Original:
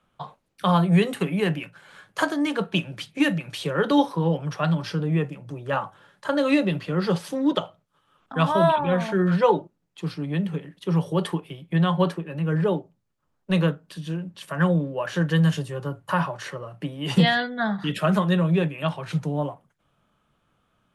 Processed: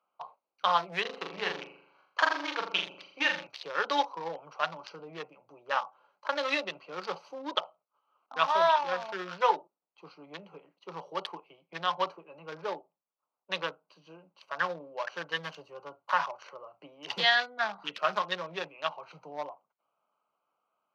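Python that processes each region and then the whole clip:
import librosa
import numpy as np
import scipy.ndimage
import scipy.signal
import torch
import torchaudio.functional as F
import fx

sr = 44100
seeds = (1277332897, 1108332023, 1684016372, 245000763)

y = fx.chain(x, sr, fx.law_mismatch(coded='A'),
    fx.lowpass(hz=5500.0, slope=12),
    fx.room_flutter(wall_m=7.0, rt60_s=0.69), at=(1.01, 3.47))
y = fx.wiener(y, sr, points=25)
y = scipy.signal.sosfilt(scipy.signal.cheby1(2, 1.0, 970.0, 'highpass', fs=sr, output='sos'), y)
y = fx.high_shelf_res(y, sr, hz=7000.0, db=-8.5, q=3.0)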